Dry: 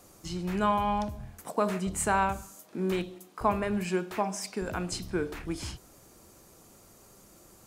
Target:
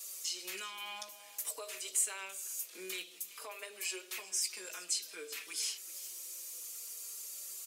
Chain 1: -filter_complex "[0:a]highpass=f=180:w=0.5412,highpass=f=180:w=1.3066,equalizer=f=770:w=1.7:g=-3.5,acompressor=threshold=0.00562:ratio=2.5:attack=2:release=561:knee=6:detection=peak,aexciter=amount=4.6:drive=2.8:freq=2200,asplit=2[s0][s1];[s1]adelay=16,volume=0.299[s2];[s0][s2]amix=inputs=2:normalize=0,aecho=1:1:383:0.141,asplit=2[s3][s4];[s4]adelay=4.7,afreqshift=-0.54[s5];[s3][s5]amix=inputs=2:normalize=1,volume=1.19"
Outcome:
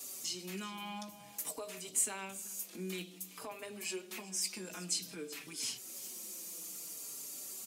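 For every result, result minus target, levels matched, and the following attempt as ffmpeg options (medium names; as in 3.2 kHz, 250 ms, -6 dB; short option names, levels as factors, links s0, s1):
250 Hz band +13.0 dB; 1 kHz band +3.0 dB
-filter_complex "[0:a]highpass=f=480:w=0.5412,highpass=f=480:w=1.3066,equalizer=f=770:w=1.7:g=-3.5,acompressor=threshold=0.00562:ratio=2.5:attack=2:release=561:knee=6:detection=peak,aexciter=amount=4.6:drive=2.8:freq=2200,asplit=2[s0][s1];[s1]adelay=16,volume=0.299[s2];[s0][s2]amix=inputs=2:normalize=0,aecho=1:1:383:0.141,asplit=2[s3][s4];[s4]adelay=4.7,afreqshift=-0.54[s5];[s3][s5]amix=inputs=2:normalize=1,volume=1.19"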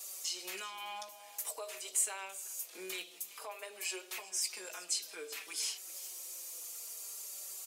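1 kHz band +3.5 dB
-filter_complex "[0:a]highpass=f=480:w=0.5412,highpass=f=480:w=1.3066,equalizer=f=770:w=1.7:g=-13,acompressor=threshold=0.00562:ratio=2.5:attack=2:release=561:knee=6:detection=peak,aexciter=amount=4.6:drive=2.8:freq=2200,asplit=2[s0][s1];[s1]adelay=16,volume=0.299[s2];[s0][s2]amix=inputs=2:normalize=0,aecho=1:1:383:0.141,asplit=2[s3][s4];[s4]adelay=4.7,afreqshift=-0.54[s5];[s3][s5]amix=inputs=2:normalize=1,volume=1.19"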